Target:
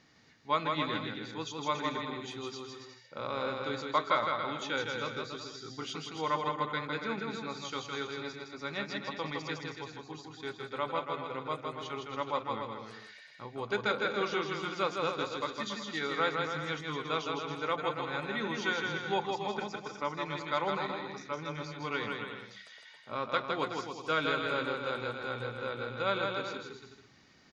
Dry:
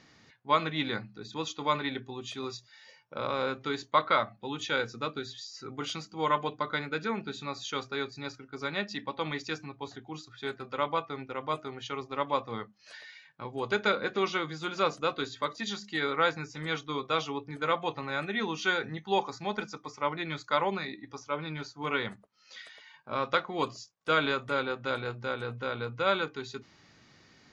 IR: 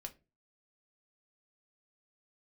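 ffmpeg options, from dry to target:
-af "aecho=1:1:160|280|370|437.5|488.1:0.631|0.398|0.251|0.158|0.1,volume=-4.5dB"

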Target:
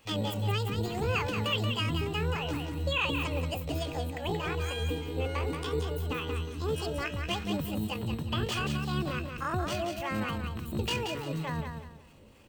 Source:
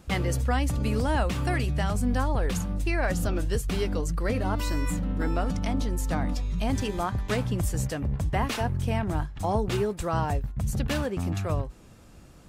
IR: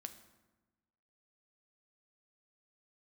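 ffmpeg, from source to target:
-filter_complex "[0:a]superequalizer=6b=1.58:11b=2.82:15b=0.316,acrossover=split=480[link_01][link_02];[link_01]aeval=exprs='val(0)*(1-0.7/2+0.7/2*cos(2*PI*3.4*n/s))':channel_layout=same[link_03];[link_02]aeval=exprs='val(0)*(1-0.7/2-0.7/2*cos(2*PI*3.4*n/s))':channel_layout=same[link_04];[link_03][link_04]amix=inputs=2:normalize=0,acrossover=split=200|2500[link_05][link_06][link_07];[link_05]acrusher=samples=18:mix=1:aa=0.000001[link_08];[link_08][link_06][link_07]amix=inputs=3:normalize=0,asetrate=72056,aresample=44100,atempo=0.612027,aecho=1:1:179|358|537|716:0.501|0.145|0.0421|0.0122,volume=-3.5dB"

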